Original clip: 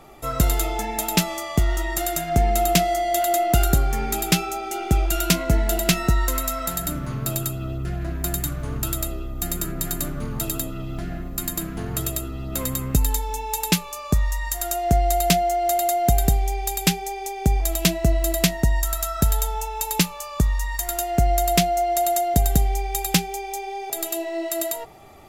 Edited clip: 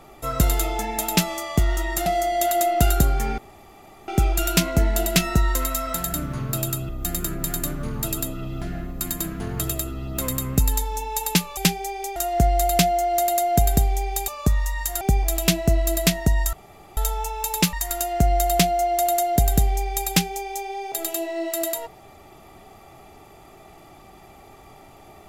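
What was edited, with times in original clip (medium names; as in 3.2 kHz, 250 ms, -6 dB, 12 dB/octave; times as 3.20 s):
2.06–2.79 s: delete
4.11–4.81 s: room tone
7.62–9.26 s: delete
13.94–14.67 s: swap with 16.79–17.38 s
18.90–19.34 s: room tone
20.10–20.71 s: delete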